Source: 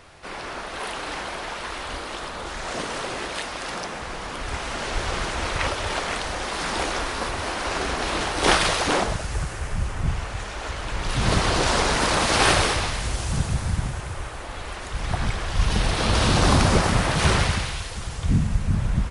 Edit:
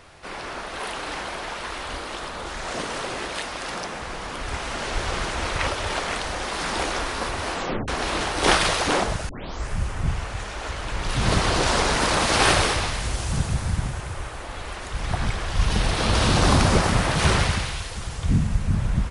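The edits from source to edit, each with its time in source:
7.53 tape stop 0.35 s
9.29 tape start 0.41 s

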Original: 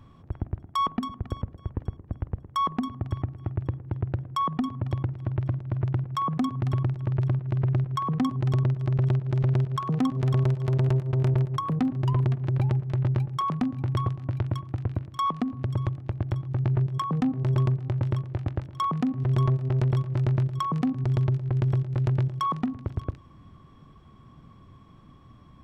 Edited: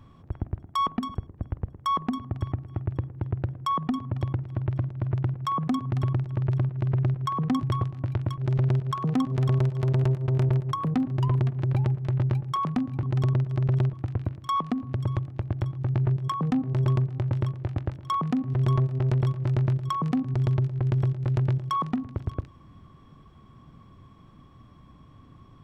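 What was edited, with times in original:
1.15–1.85 cut
8.33–9.23 swap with 13.88–14.63

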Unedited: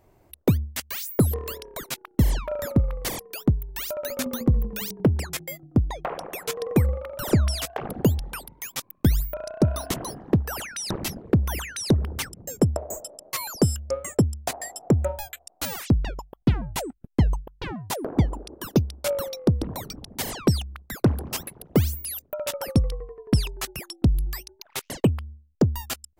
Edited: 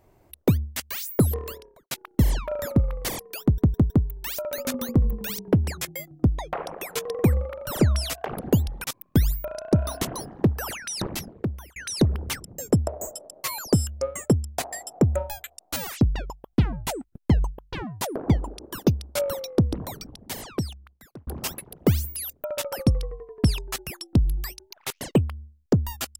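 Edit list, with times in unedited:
1.36–1.91 studio fade out
3.42 stutter 0.16 s, 4 plays
8.36–8.73 cut
10.9–11.65 fade out
19.57–21.16 fade out

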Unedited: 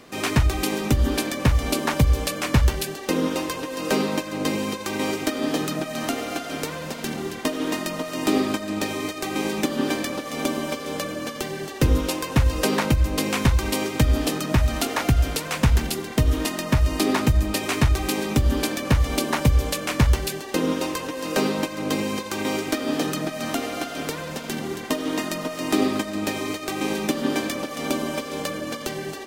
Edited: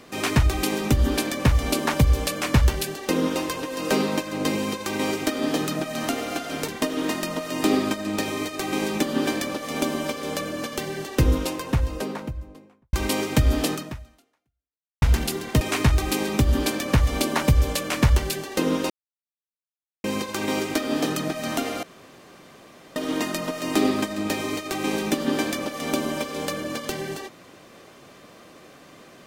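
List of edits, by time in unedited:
6.68–7.31 cut
11.68–13.56 studio fade out
14.36–15.65 fade out exponential
16.24–17.58 cut
20.87–22.01 mute
23.8–24.93 room tone

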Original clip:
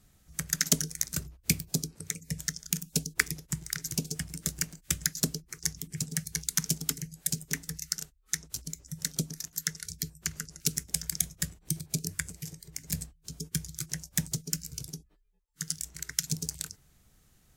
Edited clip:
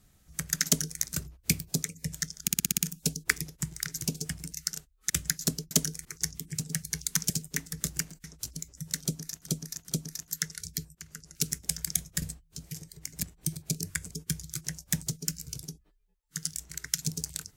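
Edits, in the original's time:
0.67–1.01 copy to 5.47
1.83–2.09 cut
2.68 stutter 0.06 s, 7 plays
4.42–4.86 swap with 7.77–8.35
6.72–7.27 cut
9.14–9.57 loop, 3 plays
10.2–10.72 fade in, from -18.5 dB
11.47–12.35 swap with 12.94–13.36

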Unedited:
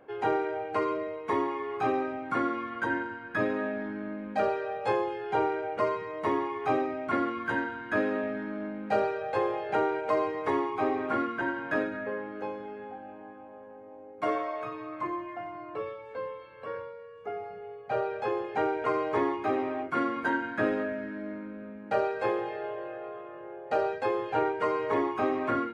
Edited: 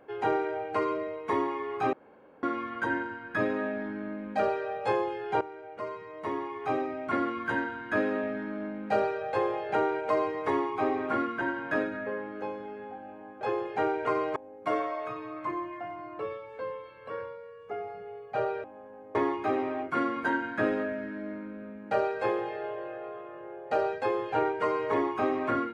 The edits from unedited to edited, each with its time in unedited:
1.93–2.43 room tone
5.41–7.32 fade in, from -15.5 dB
13.41–13.92 swap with 18.2–19.15

